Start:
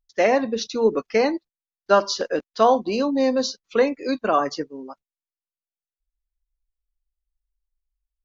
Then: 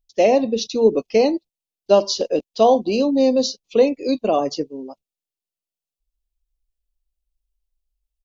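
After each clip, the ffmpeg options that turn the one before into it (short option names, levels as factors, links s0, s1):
-af "firequalizer=gain_entry='entry(650,0);entry(1500,-23);entry(2600,-1)':delay=0.05:min_phase=1,volume=1.58"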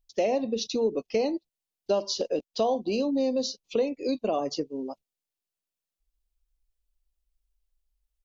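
-af "acompressor=threshold=0.0398:ratio=2.5"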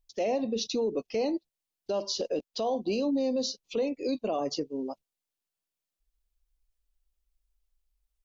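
-af "alimiter=limit=0.0841:level=0:latency=1:release=19"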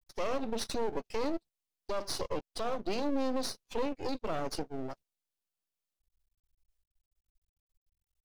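-af "aeval=exprs='max(val(0),0)':c=same"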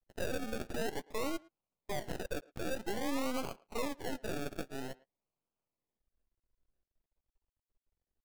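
-filter_complex "[0:a]acrusher=samples=34:mix=1:aa=0.000001:lfo=1:lforange=20.4:lforate=0.5,asplit=2[s0][s1];[s1]adelay=110,highpass=300,lowpass=3400,asoftclip=type=hard:threshold=0.0316,volume=0.0891[s2];[s0][s2]amix=inputs=2:normalize=0,volume=0.668"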